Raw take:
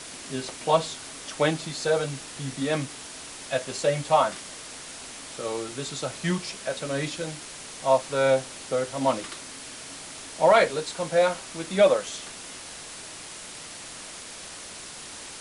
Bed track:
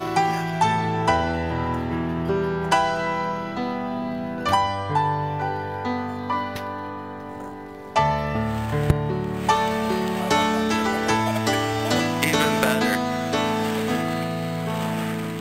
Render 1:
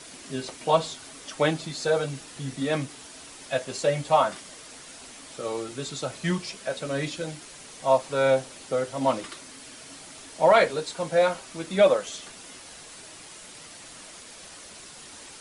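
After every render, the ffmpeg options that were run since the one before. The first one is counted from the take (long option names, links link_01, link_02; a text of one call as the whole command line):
ffmpeg -i in.wav -af "afftdn=noise_reduction=6:noise_floor=-41" out.wav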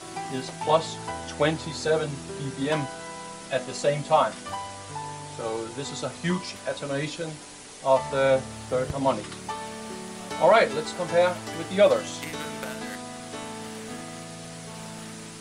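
ffmpeg -i in.wav -i bed.wav -filter_complex "[1:a]volume=-14.5dB[link_01];[0:a][link_01]amix=inputs=2:normalize=0" out.wav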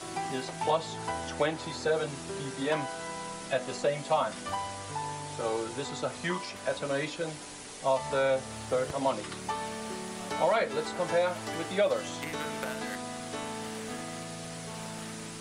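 ffmpeg -i in.wav -filter_complex "[0:a]acrossover=split=330|2500[link_01][link_02][link_03];[link_01]acompressor=threshold=-41dB:ratio=4[link_04];[link_02]acompressor=threshold=-25dB:ratio=4[link_05];[link_03]acompressor=threshold=-42dB:ratio=4[link_06];[link_04][link_05][link_06]amix=inputs=3:normalize=0" out.wav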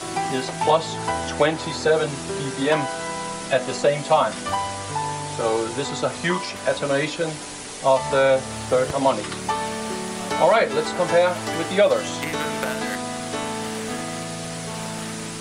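ffmpeg -i in.wav -af "volume=9.5dB" out.wav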